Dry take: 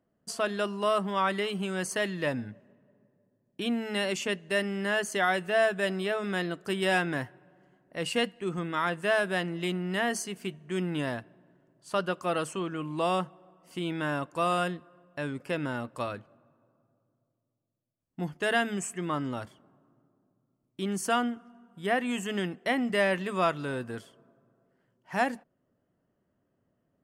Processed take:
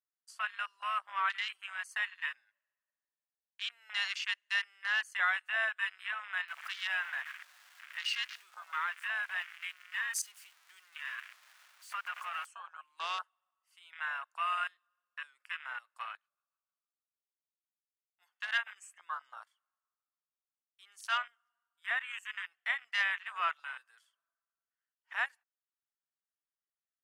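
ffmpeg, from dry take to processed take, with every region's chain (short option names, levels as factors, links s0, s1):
-filter_complex "[0:a]asettb=1/sr,asplit=3[s0][s1][s2];[s0]atrim=end=6.484[s3];[s1]atrim=start=6.48:end=12.46,asetpts=PTS-STARTPTS,afade=t=in:d=0.004:c=qsin,afade=t=out:st=5.976:d=0.004:c=qsin,aeval=exprs='val(0)+0.5*0.0251*sgn(val(0))':c=same,acompressor=threshold=0.0355:ratio=2:attack=3.2:release=140:knee=1:detection=peak[s4];[s2]atrim=start=12.456[s5];[s3][s4]acrossfade=d=0.004:c1=hsin:c2=qsin[s6];[s6][s5]acrossfade=d=0.004:c1=qsin:c2=hsin,asettb=1/sr,asplit=3[s7][s8][s9];[s7]atrim=end=16.174[s10];[s8]atrim=start=16.17:end=18.76,asetpts=PTS-STARTPTS,afade=t=in:d=0.004:c=qsin,afade=t=out:st=2.586:d=0.004:c=qsin,bandreject=f=106.7:t=h:w=4,bandreject=f=213.4:t=h:w=4,bandreject=f=320.1:t=h:w=4,bandreject=f=426.8:t=h:w=4,bandreject=f=533.5:t=h:w=4,bandreject=f=640.2:t=h:w=4,bandreject=f=746.9:t=h:w=4,bandreject=f=853.6:t=h:w=4,bandreject=f=960.3:t=h:w=4,bandreject=f=1067:t=h:w=4,bandreject=f=1173.7:t=h:w=4,bandreject=f=1280.4:t=h:w=4,bandreject=f=1387.1:t=h:w=4,bandreject=f=1493.8:t=h:w=4,bandreject=f=1600.5:t=h:w=4,bandreject=f=1707.2:t=h:w=4,bandreject=f=1813.9:t=h:w=4,bandreject=f=1920.6:t=h:w=4,bandreject=f=2027.3:t=h:w=4,bandreject=f=2134:t=h:w=4,bandreject=f=2240.7:t=h:w=4,bandreject=f=2347.4:t=h:w=4,bandreject=f=2454.1:t=h:w=4,bandreject=f=2560.8:t=h:w=4,bandreject=f=2667.5:t=h:w=4,bandreject=f=2774.2:t=h:w=4,bandreject=f=2880.9:t=h:w=4,bandreject=f=2987.6:t=h:w=4,bandreject=f=3094.3:t=h:w=4,bandreject=f=3201:t=h:w=4,bandreject=f=3307.7:t=h:w=4,bandreject=f=3414.4:t=h:w=4,bandreject=f=3521.1:t=h:w=4,acrossover=split=870[s11][s12];[s11]aeval=exprs='val(0)*(1-0.7/2+0.7/2*cos(2*PI*6.5*n/s))':c=same[s13];[s12]aeval=exprs='val(0)*(1-0.7/2-0.7/2*cos(2*PI*6.5*n/s))':c=same[s14];[s13][s14]amix=inputs=2:normalize=0[s15];[s9]atrim=start=18.756[s16];[s10][s15]acrossfade=d=0.004:c1=hsin:c2=qsin[s17];[s17][s16]acrossfade=d=0.004:c1=qsin:c2=hsin,highpass=f=1200:w=0.5412,highpass=f=1200:w=1.3066,afwtdn=0.0112"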